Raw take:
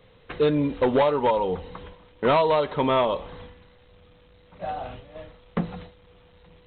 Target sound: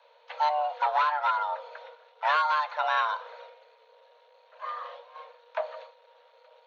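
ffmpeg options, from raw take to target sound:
-filter_complex "[0:a]afreqshift=450,asplit=2[a][b];[b]asetrate=66075,aresample=44100,atempo=0.66742,volume=-18dB[c];[a][c]amix=inputs=2:normalize=0,volume=-5dB"

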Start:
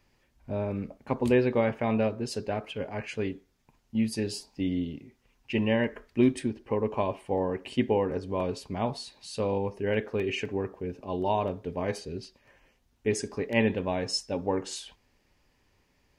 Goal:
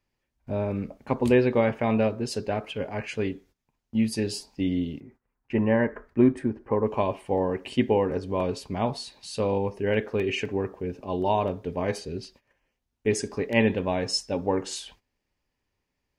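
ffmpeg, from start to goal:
-filter_complex "[0:a]asettb=1/sr,asplit=3[a][b][c];[a]atrim=end=5.004[d];[b]atrim=start=5:end=6.87,asetpts=PTS-STARTPTS,afade=t=in:d=0.004:c=qsin,afade=t=out:st=1.866:d=0.004:c=qsin,highshelf=f=2.2k:t=q:w=1.5:g=-13[e];[c]atrim=start=6.866[f];[d][e]acrossfade=d=0.004:c1=hsin:c2=qsin[g];[g][f]acrossfade=d=0.004:c1=qsin:c2=hsin,agate=range=-15dB:threshold=-56dB:ratio=16:detection=peak,volume=3dB"

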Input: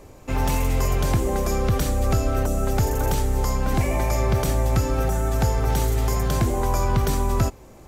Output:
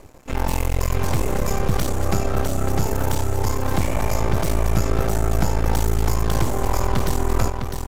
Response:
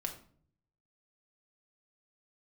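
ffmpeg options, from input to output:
-filter_complex "[0:a]aeval=exprs='max(val(0),0)':c=same,asplit=2[a][b];[b]aecho=0:1:653:0.531[c];[a][c]amix=inputs=2:normalize=0,volume=3dB"

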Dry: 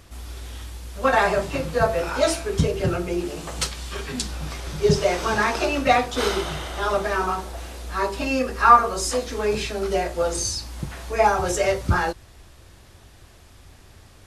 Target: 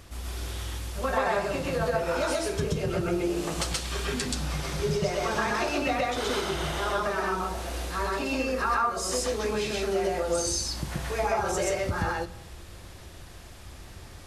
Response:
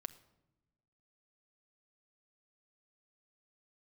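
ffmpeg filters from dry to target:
-filter_complex "[0:a]acompressor=threshold=-30dB:ratio=3,asplit=2[a][b];[1:a]atrim=start_sample=2205,adelay=128[c];[b][c]afir=irnorm=-1:irlink=0,volume=4.5dB[d];[a][d]amix=inputs=2:normalize=0"

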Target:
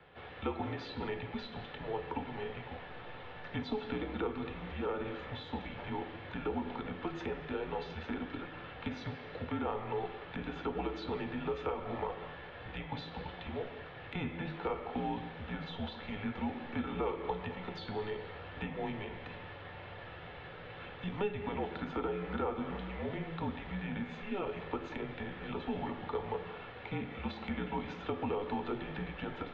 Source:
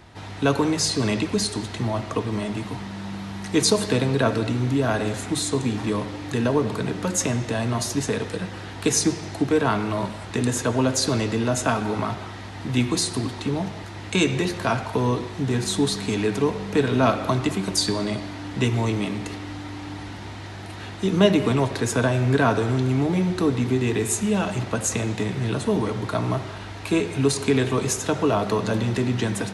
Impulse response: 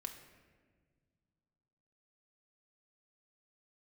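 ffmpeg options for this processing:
-filter_complex "[0:a]highpass=f=300:t=q:w=0.5412,highpass=f=300:t=q:w=1.307,lowpass=f=3.5k:t=q:w=0.5176,lowpass=f=3.5k:t=q:w=0.7071,lowpass=f=3.5k:t=q:w=1.932,afreqshift=-200[a];[1:a]atrim=start_sample=2205,afade=t=out:st=0.15:d=0.01,atrim=end_sample=7056,asetrate=79380,aresample=44100[b];[a][b]afir=irnorm=-1:irlink=0,acrossover=split=190|1100[c][d][e];[c]acompressor=threshold=-49dB:ratio=4[f];[d]acompressor=threshold=-35dB:ratio=4[g];[e]acompressor=threshold=-48dB:ratio=4[h];[f][g][h]amix=inputs=3:normalize=0,volume=1.5dB"

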